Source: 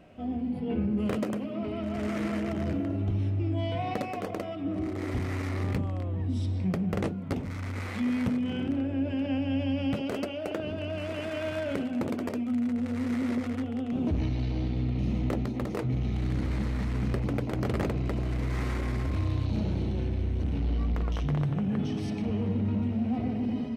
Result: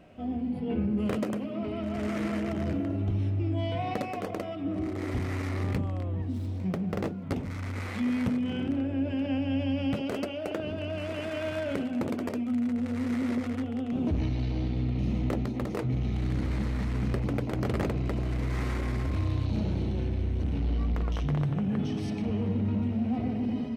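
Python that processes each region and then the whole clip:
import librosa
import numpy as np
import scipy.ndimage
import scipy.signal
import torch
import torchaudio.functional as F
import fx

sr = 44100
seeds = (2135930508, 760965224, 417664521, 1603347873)

y = fx.chain(x, sr, fx.median_filter(points=15),
    fx.low_shelf(hz=140.0, db=-5.5), at=(6.22, 7.24))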